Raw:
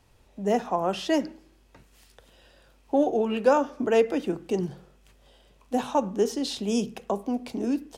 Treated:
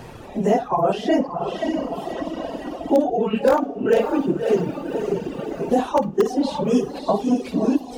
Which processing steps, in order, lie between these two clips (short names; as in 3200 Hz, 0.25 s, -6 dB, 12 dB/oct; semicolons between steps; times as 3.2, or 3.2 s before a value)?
phase scrambler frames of 50 ms; in parallel at -6.5 dB: wrapped overs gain 11 dB; on the sum: high shelf 2100 Hz -9 dB; diffused feedback echo 0.573 s, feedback 44%, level -7 dB; on a send at -7 dB: reverb RT60 0.25 s, pre-delay 47 ms; on the sum: reverb removal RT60 1.6 s; three-band squash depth 70%; gain +3.5 dB